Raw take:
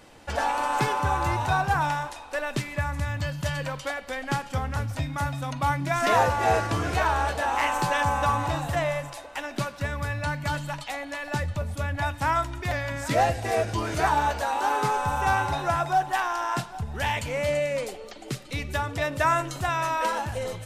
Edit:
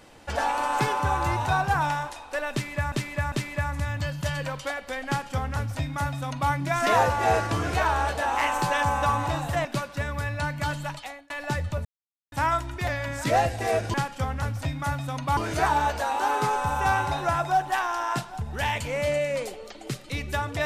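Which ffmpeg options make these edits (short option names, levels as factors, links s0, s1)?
-filter_complex "[0:a]asplit=9[s0][s1][s2][s3][s4][s5][s6][s7][s8];[s0]atrim=end=2.922[s9];[s1]atrim=start=2.518:end=2.922[s10];[s2]atrim=start=2.518:end=8.852[s11];[s3]atrim=start=9.488:end=11.14,asetpts=PTS-STARTPTS,afade=t=out:st=1.262:d=0.39[s12];[s4]atrim=start=11.14:end=11.69,asetpts=PTS-STARTPTS,afade=t=in:d=0.004:c=hsin,afade=t=out:st=0.546:d=0.004:c=hsin[s13];[s5]atrim=start=11.69:end=12.16,asetpts=PTS-STARTPTS,volume=0[s14];[s6]atrim=start=12.16:end=13.782,asetpts=PTS-STARTPTS,afade=t=in:d=0.004:c=hsin[s15];[s7]atrim=start=4.278:end=5.712[s16];[s8]atrim=start=13.778[s17];[s9][s10]acrossfade=d=0.004:c1=hsin:c2=hsin[s18];[s18][s11]acrossfade=d=0.004:c1=hsin:c2=hsin[s19];[s12][s13][s14][s15]concat=n=4:v=0:a=1[s20];[s19][s20]acrossfade=d=0.004:c1=hsin:c2=hsin[s21];[s21][s16]acrossfade=d=0.004:c1=hsin:c2=hsin[s22];[s22][s17]acrossfade=d=0.004:c1=hsin:c2=hsin"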